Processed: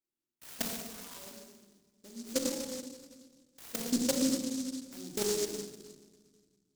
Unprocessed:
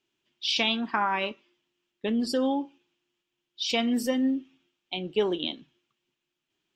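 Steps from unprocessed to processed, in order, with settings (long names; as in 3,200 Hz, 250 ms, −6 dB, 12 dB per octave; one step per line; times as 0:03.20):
0:00.67–0:01.16: Butterworth high-pass 1,000 Hz 72 dB per octave
output level in coarse steps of 24 dB
pitch vibrato 1.3 Hz 24 cents
rectangular room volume 1,300 cubic metres, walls mixed, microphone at 2.5 metres
short delay modulated by noise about 5,800 Hz, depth 0.21 ms
level −4 dB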